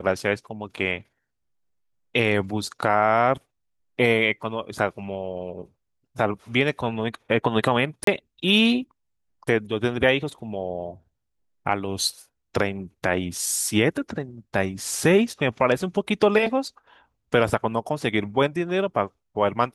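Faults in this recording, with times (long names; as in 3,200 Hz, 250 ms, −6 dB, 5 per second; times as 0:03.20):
0:08.04–0:08.07: drop-out 33 ms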